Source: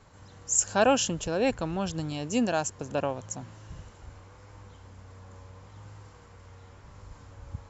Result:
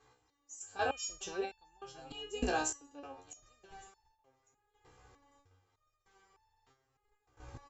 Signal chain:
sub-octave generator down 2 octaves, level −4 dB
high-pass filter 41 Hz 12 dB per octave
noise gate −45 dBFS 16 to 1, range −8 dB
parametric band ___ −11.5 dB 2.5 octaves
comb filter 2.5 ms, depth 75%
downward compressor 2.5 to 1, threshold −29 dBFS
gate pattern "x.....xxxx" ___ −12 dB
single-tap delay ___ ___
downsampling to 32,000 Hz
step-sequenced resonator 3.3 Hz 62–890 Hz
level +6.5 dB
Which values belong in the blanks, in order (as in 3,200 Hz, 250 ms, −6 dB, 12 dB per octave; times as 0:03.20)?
69 Hz, 114 BPM, 1,155 ms, −21.5 dB